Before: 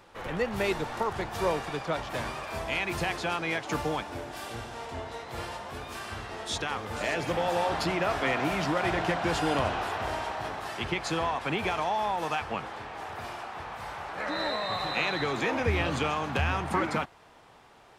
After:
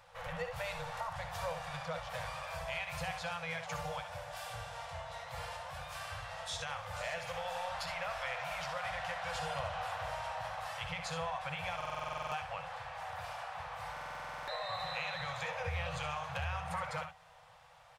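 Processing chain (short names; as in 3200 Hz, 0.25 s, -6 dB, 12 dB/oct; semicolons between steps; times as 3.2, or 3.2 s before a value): FFT band-reject 180–470 Hz; 7.18–9.35 bell 190 Hz -9.5 dB 2.4 oct; compressor 2:1, threshold -35 dBFS, peak gain reduction 7 dB; resonator 380 Hz, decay 0.6 s; early reflections 62 ms -10 dB, 74 ms -11.5 dB; stuck buffer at 11.76/13.92, samples 2048, times 11; gain +3 dB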